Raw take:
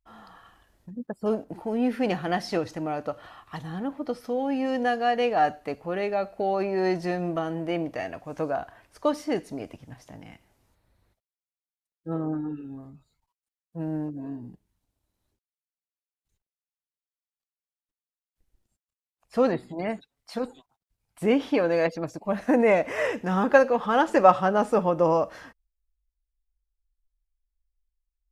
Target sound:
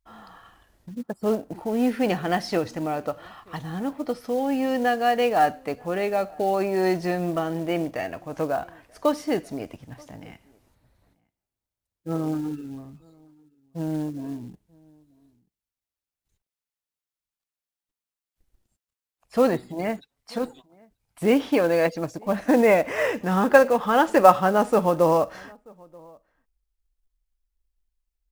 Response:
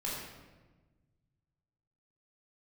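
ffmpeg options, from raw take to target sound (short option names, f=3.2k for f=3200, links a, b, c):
-filter_complex "[0:a]asplit=2[a][b];[b]adelay=932.9,volume=-27dB,highshelf=f=4k:g=-21[c];[a][c]amix=inputs=2:normalize=0,acrusher=bits=6:mode=log:mix=0:aa=0.000001,volume=2.5dB"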